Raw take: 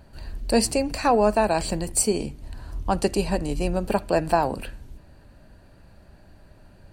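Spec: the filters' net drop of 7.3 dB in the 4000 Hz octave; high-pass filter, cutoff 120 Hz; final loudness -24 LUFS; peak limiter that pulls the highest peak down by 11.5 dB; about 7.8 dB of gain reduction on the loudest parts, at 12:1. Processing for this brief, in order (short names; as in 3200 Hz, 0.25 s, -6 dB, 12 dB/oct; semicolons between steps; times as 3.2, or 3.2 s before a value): HPF 120 Hz; bell 4000 Hz -9 dB; compressor 12:1, threshold -22 dBFS; gain +10 dB; limiter -13 dBFS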